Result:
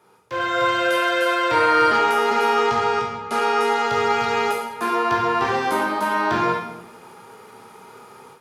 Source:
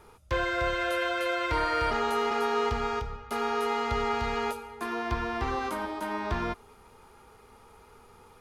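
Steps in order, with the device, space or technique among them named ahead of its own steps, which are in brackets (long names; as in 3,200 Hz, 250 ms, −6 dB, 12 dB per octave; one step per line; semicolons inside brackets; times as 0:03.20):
0:02.56–0:03.85: low-pass filter 11,000 Hz 24 dB per octave
far laptop microphone (convolution reverb RT60 0.90 s, pre-delay 12 ms, DRR −1 dB; high-pass filter 140 Hz 24 dB per octave; automatic gain control gain up to 12 dB)
level −4 dB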